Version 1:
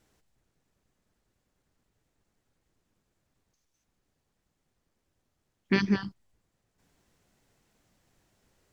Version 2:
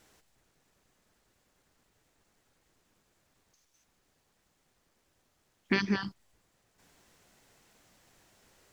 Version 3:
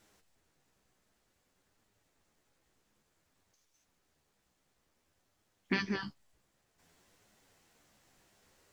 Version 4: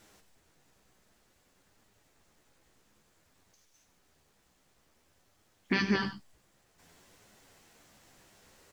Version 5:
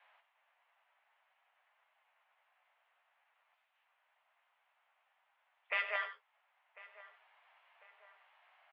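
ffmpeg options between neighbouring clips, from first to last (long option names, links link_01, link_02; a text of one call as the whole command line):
ffmpeg -i in.wav -af "lowshelf=frequency=340:gain=-8.5,acompressor=threshold=-36dB:ratio=2.5,volume=8.5dB" out.wav
ffmpeg -i in.wav -af "flanger=delay=9.1:depth=7:regen=42:speed=0.55:shape=triangular" out.wav
ffmpeg -i in.wav -af "alimiter=limit=-23dB:level=0:latency=1:release=78,aecho=1:1:96:0.266,volume=7dB" out.wav
ffmpeg -i in.wav -filter_complex "[0:a]asplit=2[link_01][link_02];[link_02]adelay=1048,lowpass=frequency=1800:poles=1,volume=-18dB,asplit=2[link_03][link_04];[link_04]adelay=1048,lowpass=frequency=1800:poles=1,volume=0.5,asplit=2[link_05][link_06];[link_06]adelay=1048,lowpass=frequency=1800:poles=1,volume=0.5,asplit=2[link_07][link_08];[link_08]adelay=1048,lowpass=frequency=1800:poles=1,volume=0.5[link_09];[link_01][link_03][link_05][link_07][link_09]amix=inputs=5:normalize=0,highpass=frequency=480:width_type=q:width=0.5412,highpass=frequency=480:width_type=q:width=1.307,lowpass=frequency=2800:width_type=q:width=0.5176,lowpass=frequency=2800:width_type=q:width=0.7071,lowpass=frequency=2800:width_type=q:width=1.932,afreqshift=220,volume=-2.5dB" out.wav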